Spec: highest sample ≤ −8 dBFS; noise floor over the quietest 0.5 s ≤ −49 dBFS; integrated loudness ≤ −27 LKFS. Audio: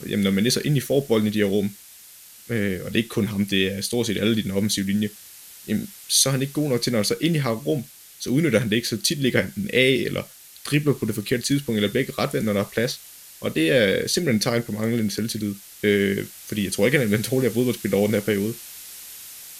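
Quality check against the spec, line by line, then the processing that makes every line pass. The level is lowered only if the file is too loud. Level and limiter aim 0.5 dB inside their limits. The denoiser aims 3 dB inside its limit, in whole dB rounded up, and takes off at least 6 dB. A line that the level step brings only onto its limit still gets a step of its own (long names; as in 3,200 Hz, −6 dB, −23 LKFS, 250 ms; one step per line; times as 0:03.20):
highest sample −3.0 dBFS: out of spec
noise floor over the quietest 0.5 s −46 dBFS: out of spec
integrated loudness −22.5 LKFS: out of spec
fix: level −5 dB
brickwall limiter −8.5 dBFS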